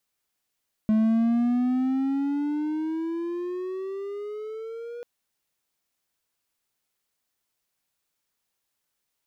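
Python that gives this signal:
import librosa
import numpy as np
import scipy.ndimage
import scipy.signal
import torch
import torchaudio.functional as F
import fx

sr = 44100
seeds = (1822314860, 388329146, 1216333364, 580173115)

y = fx.riser_tone(sr, length_s=4.14, level_db=-15.5, wave='triangle', hz=215.0, rise_st=14.0, swell_db=-17)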